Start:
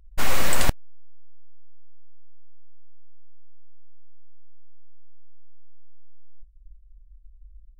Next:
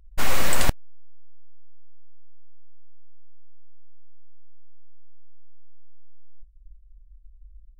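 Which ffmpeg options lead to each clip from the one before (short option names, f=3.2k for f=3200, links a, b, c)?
-af anull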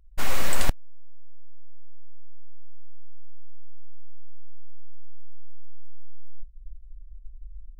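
-af "asubboost=boost=4.5:cutoff=53,volume=-4dB"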